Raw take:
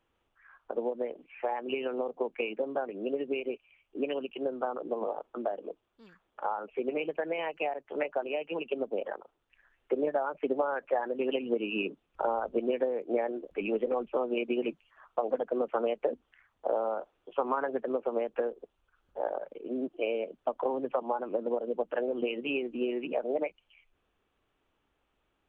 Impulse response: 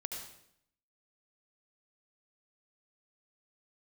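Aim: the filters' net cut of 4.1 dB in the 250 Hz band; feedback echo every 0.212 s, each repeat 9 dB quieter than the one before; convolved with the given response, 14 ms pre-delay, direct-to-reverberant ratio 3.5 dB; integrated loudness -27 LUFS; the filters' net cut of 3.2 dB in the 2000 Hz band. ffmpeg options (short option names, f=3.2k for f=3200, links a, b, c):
-filter_complex "[0:a]equalizer=f=250:t=o:g=-5.5,equalizer=f=2k:t=o:g=-4.5,aecho=1:1:212|424|636|848:0.355|0.124|0.0435|0.0152,asplit=2[a][b];[1:a]atrim=start_sample=2205,adelay=14[c];[b][c]afir=irnorm=-1:irlink=0,volume=-3dB[d];[a][d]amix=inputs=2:normalize=0,volume=5.5dB"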